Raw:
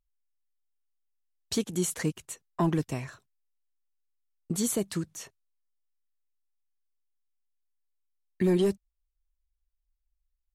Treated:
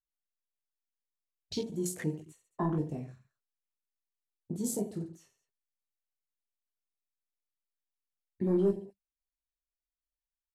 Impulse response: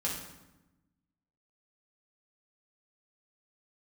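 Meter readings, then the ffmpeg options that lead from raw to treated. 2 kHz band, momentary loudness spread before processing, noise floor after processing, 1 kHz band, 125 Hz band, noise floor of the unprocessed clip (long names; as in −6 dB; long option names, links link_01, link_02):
−9.0 dB, 16 LU, below −85 dBFS, −4.5 dB, −4.0 dB, −81 dBFS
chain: -af "aecho=1:1:20|48|87.2|142.1|218.9:0.631|0.398|0.251|0.158|0.1,afwtdn=0.0178,volume=-6dB"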